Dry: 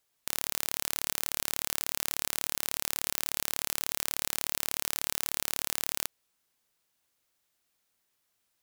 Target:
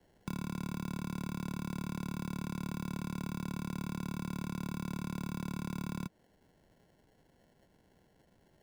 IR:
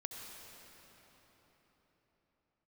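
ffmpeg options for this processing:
-filter_complex "[0:a]lowshelf=f=250:t=q:w=3:g=10.5,acrusher=samples=36:mix=1:aa=0.000001,acrossover=split=130|1100[s0][s1][s2];[s0]acompressor=threshold=0.00126:ratio=4[s3];[s1]acompressor=threshold=0.00562:ratio=4[s4];[s2]acompressor=threshold=0.00158:ratio=4[s5];[s3][s4][s5]amix=inputs=3:normalize=0,volume=2.82"

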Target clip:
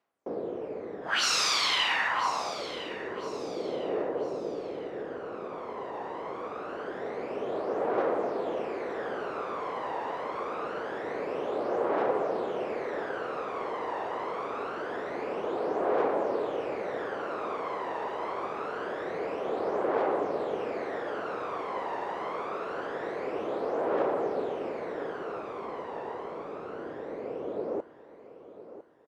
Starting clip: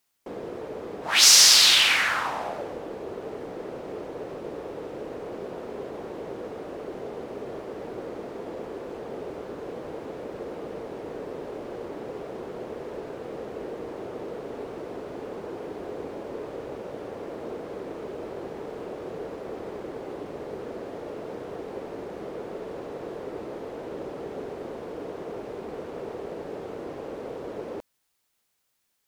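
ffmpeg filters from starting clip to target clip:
-filter_complex "[0:a]acrossover=split=790[s0][s1];[s1]dynaudnorm=f=430:g=21:m=4.73[s2];[s0][s2]amix=inputs=2:normalize=0,aphaser=in_gain=1:out_gain=1:delay=1.1:decay=0.56:speed=0.25:type=triangular,bandpass=f=650:t=q:w=0.72:csg=0,bandreject=f=890:w=24,aecho=1:1:1004|2008|3012:0.2|0.0698|0.0244"

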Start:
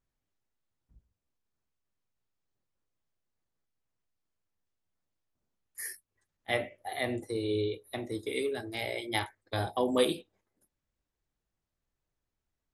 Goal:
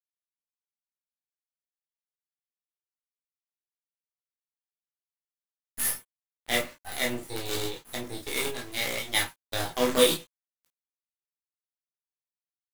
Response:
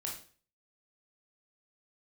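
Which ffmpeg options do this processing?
-filter_complex "[0:a]highshelf=f=2800:g=11,acrusher=bits=5:dc=4:mix=0:aa=0.000001[s0];[1:a]atrim=start_sample=2205,atrim=end_sample=3528,asetrate=66150,aresample=44100[s1];[s0][s1]afir=irnorm=-1:irlink=0,volume=2"

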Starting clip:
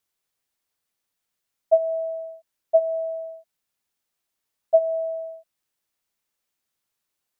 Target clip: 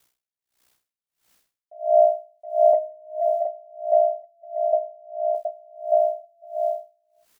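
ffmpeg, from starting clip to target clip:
-filter_complex "[0:a]acompressor=threshold=0.112:ratio=6,aeval=exprs='val(0)*sin(2*PI*31*n/s)':c=same,asettb=1/sr,asplit=3[s0][s1][s2];[s0]atrim=end=3.294[s3];[s1]atrim=start=3.29:end=5.35,asetpts=PTS-STARTPTS,afade=t=in:d=0.004:c=qsin,afade=t=out:st=2.056:d=0.004:c=qsin,bandpass=f=650:t=q:w=5.2:csg=0[s4];[s2]atrim=start=5.346[s5];[s3][s4]acrossfade=d=0.004:c1=hsin:c2=qsin[s6];[s6][s5]acrossfade=d=0.004:c1=qsin:c2=hsin,aecho=1:1:720|1188|1492|1690|1818:0.631|0.398|0.251|0.158|0.1,alimiter=level_in=18.8:limit=0.891:release=50:level=0:latency=1,aeval=exprs='val(0)*pow(10,-35*(0.5-0.5*cos(2*PI*1.5*n/s))/20)':c=same,volume=0.501"

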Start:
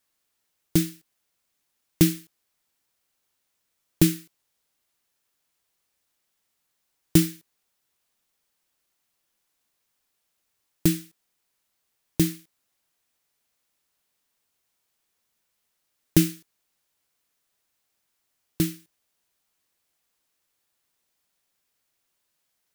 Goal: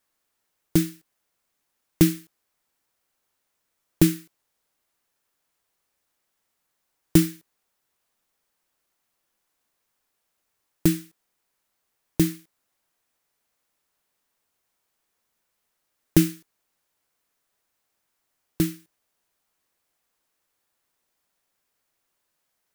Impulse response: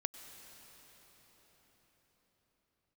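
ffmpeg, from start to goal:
-filter_complex "[0:a]asplit=2[s0][s1];[s1]equalizer=f=100:w=0.67:g=-14.5[s2];[1:a]atrim=start_sample=2205,atrim=end_sample=3969,lowpass=2200[s3];[s2][s3]afir=irnorm=-1:irlink=0,volume=0.75[s4];[s0][s4]amix=inputs=2:normalize=0,volume=0.891"

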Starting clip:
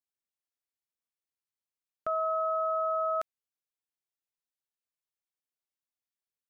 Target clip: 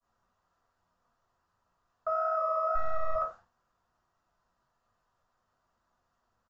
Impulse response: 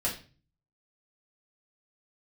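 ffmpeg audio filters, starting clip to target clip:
-filter_complex "[0:a]aeval=exprs='val(0)+0.5*0.00668*sgn(val(0))':c=same,agate=range=0.0224:threshold=0.00708:ratio=3:detection=peak,flanger=delay=5.9:depth=6.8:regen=82:speed=1.7:shape=triangular,asettb=1/sr,asplit=3[s0][s1][s2];[s0]atrim=end=2.754[s3];[s1]atrim=start=2.75:end=3.15,asetpts=PTS-STARTPTS,afade=t=in:d=0.004:c=qsin,afade=t=out:st=0.396:d=0.004:c=qsin,aeval=exprs='max(val(0),0)':c=same[s4];[s2]atrim=start=3.146[s5];[s3][s4]acrossfade=d=0.004:c1=hsin:c2=qsin[s6];[s6][s5]acrossfade=d=0.004:c1=qsin:c2=hsin,firequalizer=gain_entry='entry(590,0);entry(1100,6);entry(2200,-17)':delay=0.05:min_phase=1[s7];[1:a]atrim=start_sample=2205,afade=t=out:st=0.15:d=0.01,atrim=end_sample=7056[s8];[s7][s8]afir=irnorm=-1:irlink=0,aresample=16000,aresample=44100,equalizer=f=310:w=0.56:g=-6.5"

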